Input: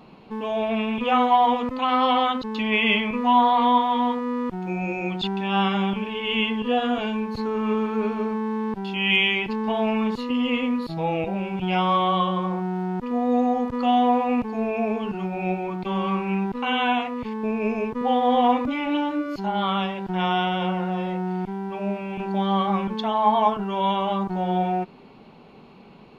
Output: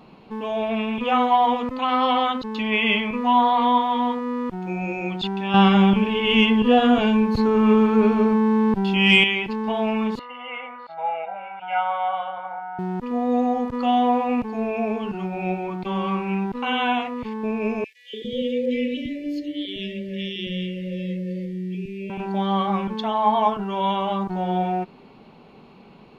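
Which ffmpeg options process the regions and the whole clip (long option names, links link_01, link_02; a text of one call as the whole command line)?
ffmpeg -i in.wav -filter_complex "[0:a]asettb=1/sr,asplit=3[link_01][link_02][link_03];[link_01]atrim=end=5.544[link_04];[link_02]atrim=start=5.54:end=9.24,asetpts=PTS-STARTPTS,afade=type=in:duration=0.004:curve=qsin,afade=type=out:start_time=3.696:duration=0.004:curve=qsin,lowshelf=frequency=270:gain=6.5,acontrast=21[link_05];[link_03]atrim=start=9.236[link_06];[link_04][link_05]acrossfade=duration=0.004:curve1=hsin:curve2=qsin[link_07];[link_07][link_06]acrossfade=duration=0.004:curve1=qsin:curve2=hsin,asettb=1/sr,asplit=3[link_08][link_09][link_10];[link_08]atrim=end=10.194[link_11];[link_09]atrim=start=10.19:end=12.79,asetpts=PTS-STARTPTS,afade=type=in:duration=0.004:curve=qsin,afade=type=out:start_time=2.596:duration=0.004:curve=qsin,asuperpass=centerf=1200:order=4:qfactor=0.91,aecho=1:1:1.4:0.83,atrim=end_sample=114660[link_12];[link_10]atrim=start=12.786[link_13];[link_11][link_12]acrossfade=duration=0.004:curve1=hsin:curve2=qsin[link_14];[link_14][link_13]acrossfade=duration=0.004:curve1=qsin:curve2=hsin,asettb=1/sr,asplit=3[link_15][link_16][link_17];[link_15]atrim=end=17.844[link_18];[link_16]atrim=start=17.84:end=22.1,asetpts=PTS-STARTPTS,afade=type=in:duration=0.004:curve=qsin,afade=type=out:start_time=4.256:duration=0.004:curve=qsin,asuperstop=centerf=1000:order=20:qfactor=0.82,acrossover=split=290|1700[link_19][link_20][link_21];[link_20]adelay=290[link_22];[link_19]adelay=400[link_23];[link_23][link_22][link_21]amix=inputs=3:normalize=0,atrim=end_sample=187866[link_24];[link_17]atrim=start=22.096[link_25];[link_18][link_24]acrossfade=duration=0.004:curve1=hsin:curve2=qsin[link_26];[link_26][link_25]acrossfade=duration=0.004:curve1=qsin:curve2=hsin" out.wav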